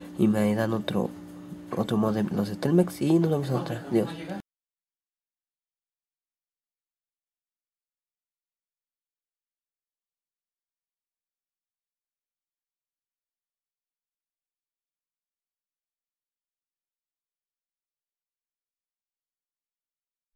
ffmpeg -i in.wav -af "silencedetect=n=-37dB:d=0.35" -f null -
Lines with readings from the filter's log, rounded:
silence_start: 4.40
silence_end: 20.35 | silence_duration: 15.95